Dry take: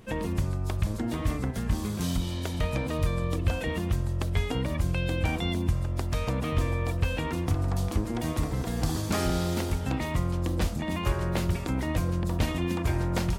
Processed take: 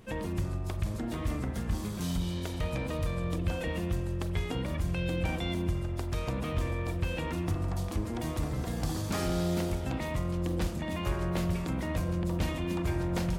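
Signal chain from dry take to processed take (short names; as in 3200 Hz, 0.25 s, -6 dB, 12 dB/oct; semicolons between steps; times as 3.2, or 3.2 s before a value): in parallel at -5 dB: soft clip -30.5 dBFS, distortion -8 dB; on the sum: spring tank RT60 2.1 s, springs 40 ms, chirp 35 ms, DRR 9 dB; gain -6.5 dB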